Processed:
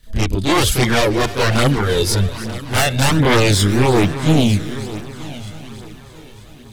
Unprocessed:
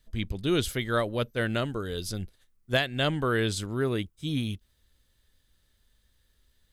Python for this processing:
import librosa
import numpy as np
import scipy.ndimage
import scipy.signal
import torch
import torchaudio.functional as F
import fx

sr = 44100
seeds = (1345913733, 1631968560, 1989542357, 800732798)

y = fx.fold_sine(x, sr, drive_db=15, ceiling_db=-11.0)
y = fx.echo_heads(y, sr, ms=313, heads='first and third', feedback_pct=51, wet_db=-15.5)
y = fx.chorus_voices(y, sr, voices=2, hz=0.6, base_ms=30, depth_ms=1.6, mix_pct=65)
y = F.gain(torch.from_numpy(y), 2.0).numpy()